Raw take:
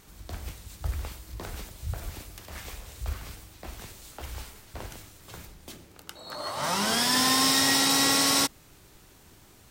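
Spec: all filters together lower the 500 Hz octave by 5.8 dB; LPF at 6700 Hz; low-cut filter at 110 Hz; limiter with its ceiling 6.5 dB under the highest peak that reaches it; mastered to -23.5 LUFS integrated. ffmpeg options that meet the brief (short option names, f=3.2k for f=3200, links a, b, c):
-af "highpass=110,lowpass=6.7k,equalizer=f=500:t=o:g=-7.5,volume=5dB,alimiter=limit=-14dB:level=0:latency=1"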